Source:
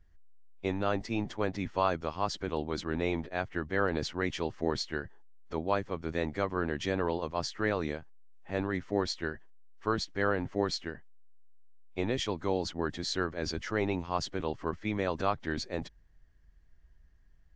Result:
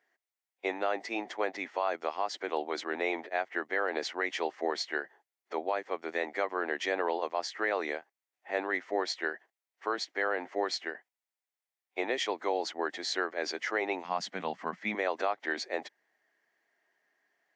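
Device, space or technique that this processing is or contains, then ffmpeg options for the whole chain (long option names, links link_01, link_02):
laptop speaker: -filter_complex "[0:a]asettb=1/sr,asplit=3[link_01][link_02][link_03];[link_01]atrim=end=14.044[link_04];[link_02]atrim=start=14.04:end=14.95,asetpts=PTS-STARTPTS,afade=type=in:duration=0.004:curve=qsin,afade=type=out:start_time=0.906:duration=0.004:curve=qsin,lowshelf=frequency=260:width_type=q:width=3:gain=10.5[link_05];[link_03]atrim=start=14.946[link_06];[link_04][link_05]acrossfade=duration=0.004:curve1=hsin:curve2=qsin[link_07];[link_07][link_06]acrossfade=duration=0.004:curve1=qsin:curve2=hsin,highpass=frequency=340:width=0.5412,highpass=frequency=340:width=1.3066,equalizer=frequency=740:width_type=o:width=0.59:gain=7.5,equalizer=frequency=2000:width_type=o:width=0.57:gain=8.5,alimiter=limit=-18dB:level=0:latency=1:release=139"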